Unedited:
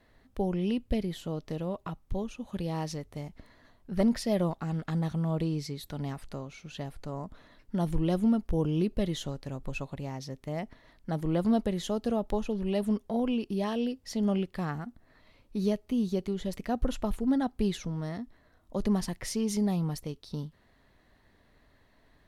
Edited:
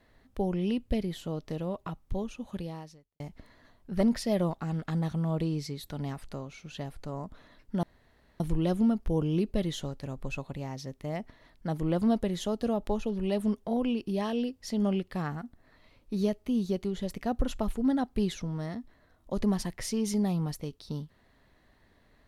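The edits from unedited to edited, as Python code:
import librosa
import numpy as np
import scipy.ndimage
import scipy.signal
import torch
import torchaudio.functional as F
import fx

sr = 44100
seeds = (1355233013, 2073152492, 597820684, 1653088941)

y = fx.edit(x, sr, fx.fade_out_span(start_s=2.5, length_s=0.7, curve='qua'),
    fx.insert_room_tone(at_s=7.83, length_s=0.57), tone=tone)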